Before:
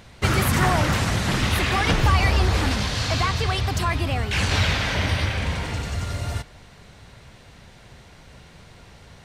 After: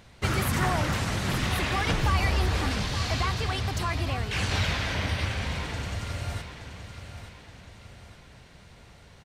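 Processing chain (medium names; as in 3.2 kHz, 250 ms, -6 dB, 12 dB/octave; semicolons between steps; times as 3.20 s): feedback delay 874 ms, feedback 43%, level -10.5 dB; trim -6 dB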